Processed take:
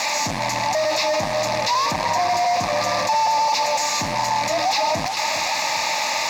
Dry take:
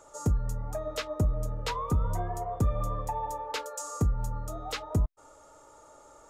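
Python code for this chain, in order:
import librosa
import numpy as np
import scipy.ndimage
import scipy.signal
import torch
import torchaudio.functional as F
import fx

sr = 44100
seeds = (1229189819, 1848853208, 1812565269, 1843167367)

y = x + 0.5 * 10.0 ** (-28.0 / 20.0) * np.diff(np.sign(x), prepend=np.sign(x[:1]))
y = scipy.signal.sosfilt(scipy.signal.cheby1(2, 1.0, [940.0, 2700.0], 'bandstop', fs=sr, output='sos'), y)
y = fx.tilt_eq(y, sr, slope=2.5)
y = fx.fuzz(y, sr, gain_db=49.0, gate_db=-52.0)
y = fx.fixed_phaser(y, sr, hz=2100.0, stages=8)
y = fx.quant_dither(y, sr, seeds[0], bits=6, dither='triangular')
y = fx.bandpass_edges(y, sr, low_hz=290.0, high_hz=5400.0)
y = fx.echo_feedback(y, sr, ms=405, feedback_pct=56, wet_db=-12.5)
y = fx.env_flatten(y, sr, amount_pct=50)
y = y * 10.0 ** (-3.0 / 20.0)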